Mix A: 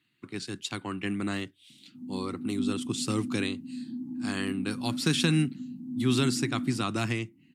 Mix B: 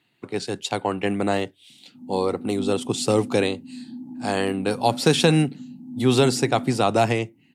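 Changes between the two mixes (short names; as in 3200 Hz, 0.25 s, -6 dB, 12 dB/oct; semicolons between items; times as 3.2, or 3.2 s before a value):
speech +5.5 dB; master: add band shelf 620 Hz +13.5 dB 1.3 oct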